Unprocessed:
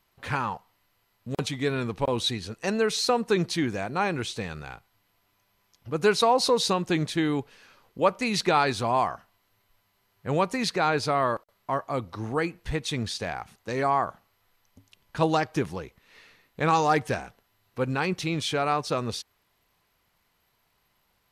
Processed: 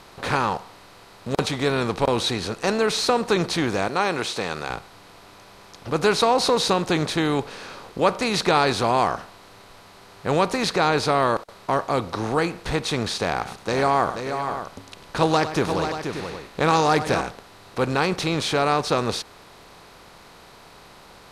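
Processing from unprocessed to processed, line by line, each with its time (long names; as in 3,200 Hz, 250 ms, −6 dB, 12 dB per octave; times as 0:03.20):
0:03.88–0:04.70: high-pass filter 460 Hz 6 dB per octave
0:13.24–0:17.21: multi-tap delay 105/481/581 ms −19.5/−12/−18 dB
whole clip: compressor on every frequency bin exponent 0.6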